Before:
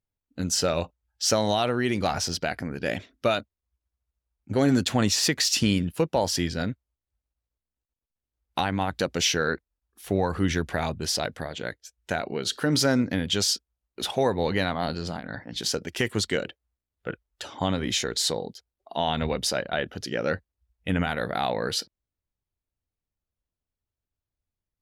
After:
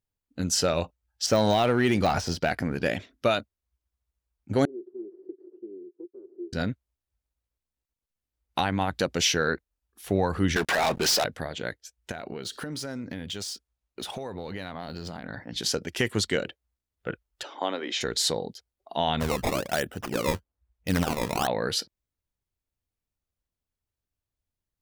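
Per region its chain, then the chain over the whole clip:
1.26–2.88 s: de-esser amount 80% + waveshaping leveller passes 1
4.65–6.53 s: comb filter that takes the minimum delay 0.67 ms + Butterworth band-pass 370 Hz, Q 6.9
10.56–11.24 s: frequency weighting A + compression 2:1, threshold -34 dBFS + waveshaping leveller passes 5
12.11–15.47 s: median filter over 3 samples + dynamic bell 9.8 kHz, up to +6 dB, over -47 dBFS, Q 1.7 + compression 10:1, threshold -31 dBFS
17.43–18.01 s: high-pass 320 Hz 24 dB/octave + distance through air 130 m
19.20–21.47 s: decimation with a swept rate 17×, swing 160% 1.1 Hz + tape noise reduction on one side only decoder only
whole clip: none

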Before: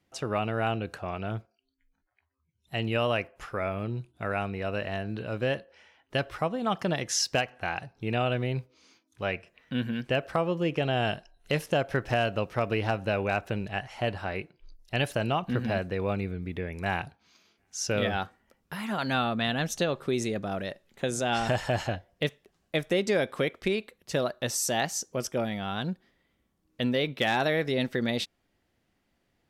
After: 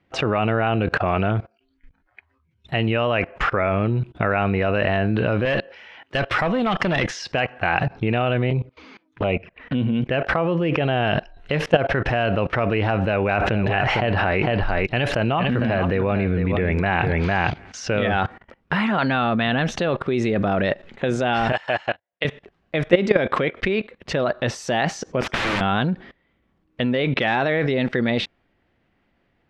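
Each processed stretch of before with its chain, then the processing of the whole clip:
5.45–7.11 s: high-pass 97 Hz + treble shelf 2.8 kHz +10 dB + valve stage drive 24 dB, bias 0.3
8.50–10.11 s: treble shelf 3.6 kHz -8 dB + touch-sensitive flanger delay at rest 7.9 ms, full sweep at -30 dBFS
13.02–18.20 s: delay 454 ms -14 dB + decay stretcher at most 31 dB/s
21.52–22.25 s: high-pass 1.1 kHz 6 dB/octave + upward expansion 2.5:1, over -52 dBFS
25.21–25.61 s: bass shelf 210 Hz -10 dB + integer overflow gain 36 dB
whole clip: level held to a coarse grid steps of 23 dB; Chebyshev low-pass 2.4 kHz, order 2; loudness maximiser +29 dB; trim -2.5 dB

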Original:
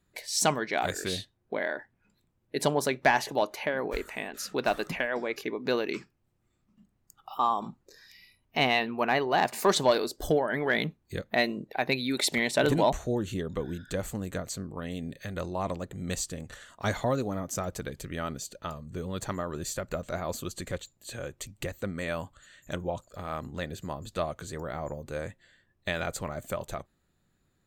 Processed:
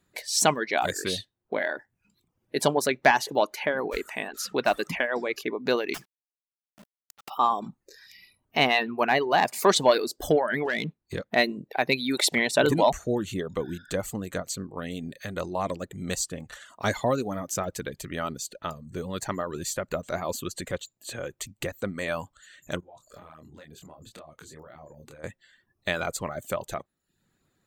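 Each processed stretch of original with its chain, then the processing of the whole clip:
5.94–7.30 s: companded quantiser 4-bit + integer overflow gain 33 dB
10.65–11.36 s: treble shelf 9 kHz -11 dB + waveshaping leveller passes 1 + compression 2.5:1, threshold -30 dBFS
22.80–25.24 s: compression 16:1, threshold -46 dBFS + doubling 26 ms -4 dB
whole clip: reverb removal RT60 0.53 s; bass shelf 85 Hz -11 dB; trim +4 dB

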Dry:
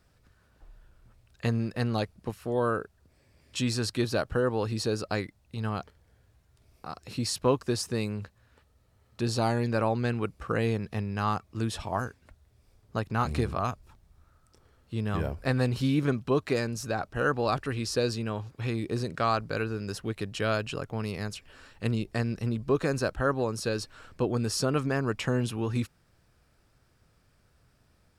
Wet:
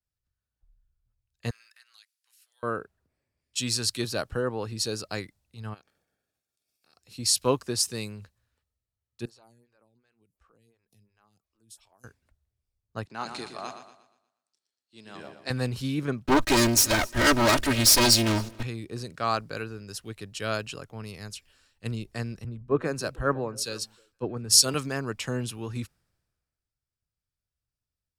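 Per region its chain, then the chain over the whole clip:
1.50–2.63 s: Chebyshev high-pass 1.5 kHz, order 3 + compression 3:1, threshold -46 dBFS
5.73–6.93 s: spectral peaks clipped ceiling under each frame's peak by 19 dB + compression 2.5:1, threshold -49 dBFS + comb of notches 1 kHz
9.25–12.04 s: treble shelf 5.6 kHz +12 dB + compression 16:1, threshold -41 dBFS + lamp-driven phase shifter 2.8 Hz
13.05–15.50 s: cabinet simulation 290–9200 Hz, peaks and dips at 470 Hz -5 dB, 1.2 kHz -5 dB, 4.3 kHz +6 dB + feedback delay 119 ms, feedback 57%, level -7 dB
16.26–18.63 s: comb filter that takes the minimum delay 3.2 ms + waveshaping leveller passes 3 + feedback delay 263 ms, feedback 34%, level -21.5 dB
22.44–24.74 s: repeats whose band climbs or falls 157 ms, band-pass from 160 Hz, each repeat 1.4 oct, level -9.5 dB + three bands expanded up and down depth 70%
whole clip: treble shelf 3.1 kHz +9.5 dB; three bands expanded up and down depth 70%; trim -4 dB

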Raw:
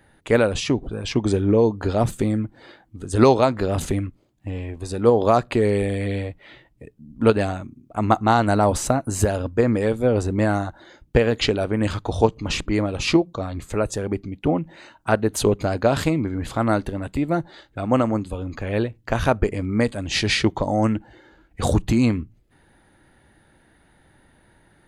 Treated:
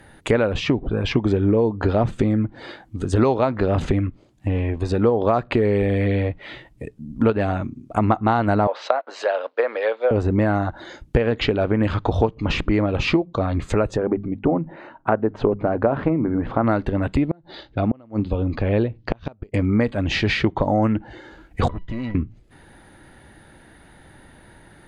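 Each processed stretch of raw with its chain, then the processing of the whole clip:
8.67–10.11 s: companding laws mixed up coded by A + elliptic band-pass 530–4200 Hz, stop band 60 dB + three bands expanded up and down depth 70%
13.97–16.64 s: low-pass 1.3 kHz + peaking EQ 61 Hz -14 dB 1.2 oct + hum notches 50/100/150/200/250 Hz
17.24–19.54 s: peaking EQ 1.5 kHz -5.5 dB 1.4 oct + inverted gate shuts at -12 dBFS, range -34 dB + Chebyshev low-pass 4.6 kHz, order 3
21.68–22.15 s: comb filter that takes the minimum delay 0.58 ms + low-pass 2.7 kHz + feedback comb 990 Hz, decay 0.2 s, mix 90%
whole clip: compression 4:1, threshold -25 dBFS; low-pass that closes with the level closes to 2.7 kHz, closed at -27 dBFS; trim +8.5 dB

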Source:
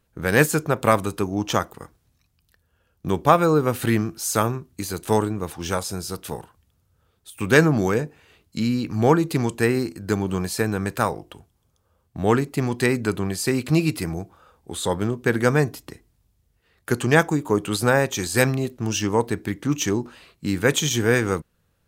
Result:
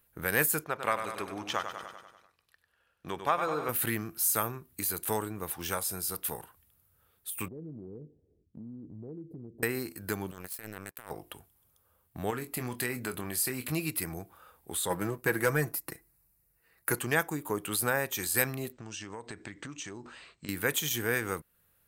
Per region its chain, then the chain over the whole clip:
0.64–3.69 s: low-pass 5.5 kHz + bass shelf 340 Hz -10.5 dB + feedback delay 97 ms, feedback 56%, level -9 dB
7.48–9.63 s: inverse Chebyshev low-pass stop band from 1.1 kHz, stop band 50 dB + compression 3:1, threshold -37 dBFS
10.31–11.11 s: power-law waveshaper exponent 2 + compressor with a negative ratio -39 dBFS
12.30–13.72 s: compression 3:1, threshold -21 dBFS + doubling 24 ms -9 dB
14.90–16.99 s: peaking EQ 3.3 kHz -14.5 dB 0.27 oct + comb 6.1 ms, depth 45% + waveshaping leveller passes 1
18.72–20.49 s: Chebyshev low-pass 8.5 kHz, order 10 + compression 8:1, threshold -31 dBFS
whole clip: treble shelf 4.3 kHz +10 dB; compression 1.5:1, threshold -32 dBFS; FFT filter 210 Hz 0 dB, 1.9 kHz +7 dB, 6.5 kHz -3 dB, 12 kHz +11 dB; trim -8.5 dB

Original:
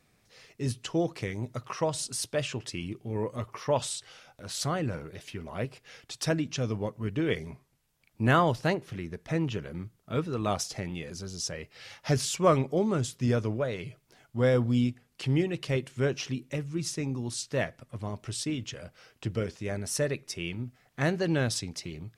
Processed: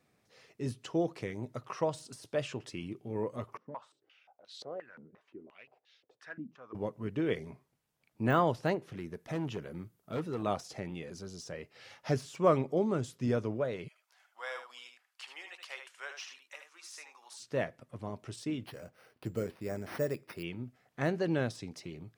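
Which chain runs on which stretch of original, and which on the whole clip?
3.57–6.75 s: hard clipper -21.5 dBFS + step-sequenced band-pass 5.7 Hz 220–3800 Hz
8.97–10.43 s: treble shelf 10 kHz +11.5 dB + overload inside the chain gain 26.5 dB
13.88–17.40 s: high-pass 900 Hz 24 dB/octave + delay 76 ms -7.5 dB
18.66–20.43 s: treble shelf 4.7 kHz -6 dB + careless resampling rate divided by 6×, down none, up hold
whole clip: de-esser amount 80%; high-pass 230 Hz 6 dB/octave; tilt shelf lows +4 dB, about 1.4 kHz; trim -4.5 dB

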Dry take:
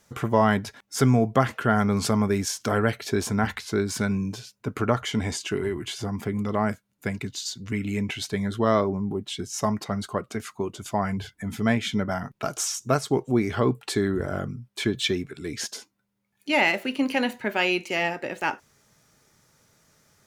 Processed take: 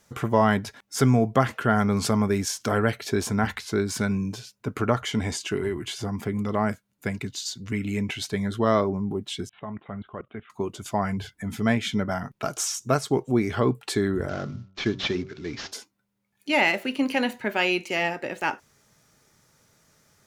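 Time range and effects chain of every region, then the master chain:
9.49–10.50 s: level held to a coarse grid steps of 17 dB + steep low-pass 3.5 kHz 96 dB/octave
14.29–15.72 s: CVSD coder 32 kbps + de-hum 95.26 Hz, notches 15
whole clip: none

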